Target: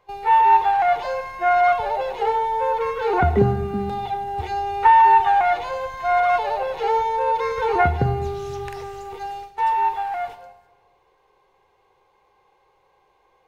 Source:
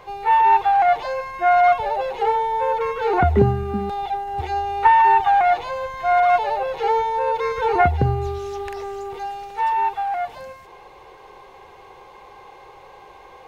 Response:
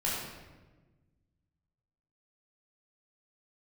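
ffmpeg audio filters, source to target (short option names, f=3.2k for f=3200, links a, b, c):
-filter_complex "[0:a]agate=range=-17dB:threshold=-33dB:ratio=16:detection=peak,asplit=2[a][b];[1:a]atrim=start_sample=2205,highshelf=f=4.6k:g=10[c];[b][c]afir=irnorm=-1:irlink=0,volume=-17.5dB[d];[a][d]amix=inputs=2:normalize=0,volume=-2dB"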